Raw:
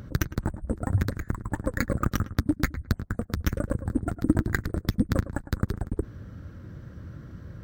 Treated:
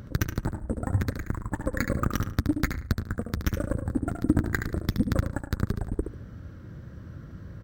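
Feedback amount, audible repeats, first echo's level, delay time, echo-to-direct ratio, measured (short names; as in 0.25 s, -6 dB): 19%, 2, -7.5 dB, 72 ms, -7.5 dB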